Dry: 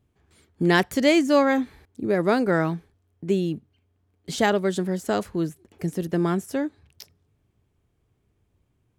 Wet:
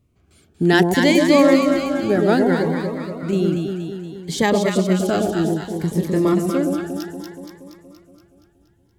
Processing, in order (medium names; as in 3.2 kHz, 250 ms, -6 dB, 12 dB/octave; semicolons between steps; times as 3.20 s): 2.52–3.33 s: compression, threshold -24 dBFS, peak gain reduction 7 dB; 5.89–6.34 s: doubling 26 ms -5.5 dB; echo whose repeats swap between lows and highs 118 ms, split 800 Hz, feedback 77%, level -2 dB; Shepard-style phaser rising 0.63 Hz; trim +4.5 dB